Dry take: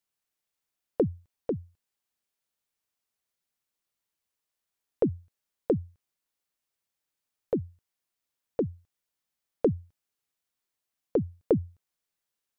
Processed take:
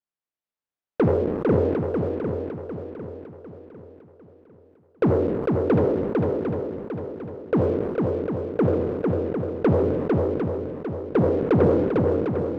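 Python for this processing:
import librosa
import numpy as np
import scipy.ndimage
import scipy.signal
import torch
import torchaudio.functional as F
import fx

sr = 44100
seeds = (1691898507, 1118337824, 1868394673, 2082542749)

p1 = fx.spec_trails(x, sr, decay_s=0.64)
p2 = fx.leveller(p1, sr, passes=3)
p3 = fx.lowpass(p2, sr, hz=1400.0, slope=6)
p4 = fx.low_shelf(p3, sr, hz=89.0, db=-6.0)
p5 = fx.hum_notches(p4, sr, base_hz=50, count=9)
p6 = p5 + fx.echo_swing(p5, sr, ms=751, ratio=1.5, feedback_pct=38, wet_db=-3, dry=0)
y = fx.sustainer(p6, sr, db_per_s=29.0)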